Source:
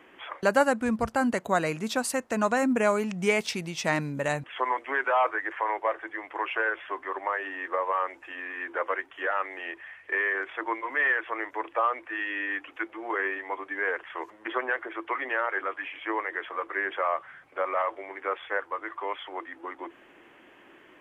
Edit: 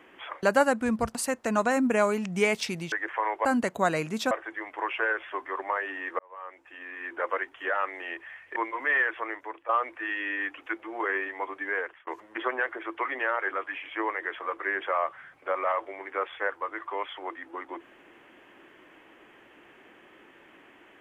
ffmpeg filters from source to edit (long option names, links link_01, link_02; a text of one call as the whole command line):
ffmpeg -i in.wav -filter_complex "[0:a]asplit=9[link_01][link_02][link_03][link_04][link_05][link_06][link_07][link_08][link_09];[link_01]atrim=end=1.152[link_10];[link_02]atrim=start=2.008:end=3.782[link_11];[link_03]atrim=start=5.348:end=5.882[link_12];[link_04]atrim=start=1.148:end=2.012[link_13];[link_05]atrim=start=5.878:end=7.76,asetpts=PTS-STARTPTS,afade=type=out:start_time=1.878:duration=0.004:curve=hsin[link_14];[link_06]atrim=start=7.76:end=10.132,asetpts=PTS-STARTPTS,afade=type=in:duration=1.13[link_15];[link_07]atrim=start=10.658:end=11.79,asetpts=PTS-STARTPTS,afade=type=out:start_time=0.592:duration=0.54:silence=0.211349[link_16];[link_08]atrim=start=11.79:end=14.17,asetpts=PTS-STARTPTS,afade=type=in:duration=0.004:curve=hsin:silence=0.211349,afade=type=out:start_time=1.89:duration=0.49:curve=qsin[link_17];[link_09]atrim=start=14.17,asetpts=PTS-STARTPTS,afade=type=in:duration=0.004:curve=hsin[link_18];[link_10][link_11]acrossfade=duration=0.004:curve1=hsin:curve2=hsin[link_19];[link_19][link_12]acrossfade=duration=0.004:curve1=hsin:curve2=hsin[link_20];[link_20][link_13]acrossfade=duration=0.004:curve1=hsin:curve2=hsin[link_21];[link_14][link_15]concat=n=2:v=0:a=1[link_22];[link_21][link_22]acrossfade=duration=0.004:curve1=hsin:curve2=hsin[link_23];[link_16][link_17][link_18]concat=n=3:v=0:a=1[link_24];[link_23][link_24]acrossfade=duration=0.004:curve1=hsin:curve2=hsin" out.wav